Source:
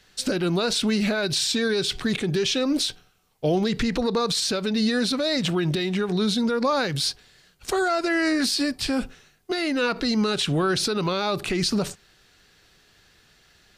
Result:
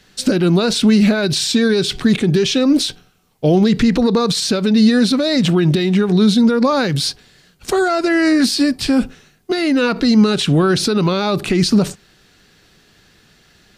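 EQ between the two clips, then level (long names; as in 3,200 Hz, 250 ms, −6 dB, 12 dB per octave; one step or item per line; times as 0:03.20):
parametric band 210 Hz +7 dB 1.7 octaves
+5.0 dB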